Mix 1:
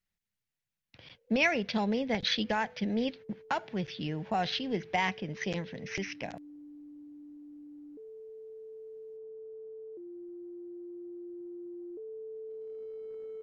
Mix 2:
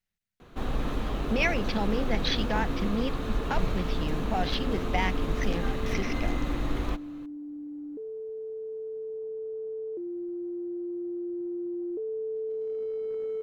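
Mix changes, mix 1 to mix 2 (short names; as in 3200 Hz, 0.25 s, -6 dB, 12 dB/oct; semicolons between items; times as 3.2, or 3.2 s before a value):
first sound: unmuted; second sound +10.0 dB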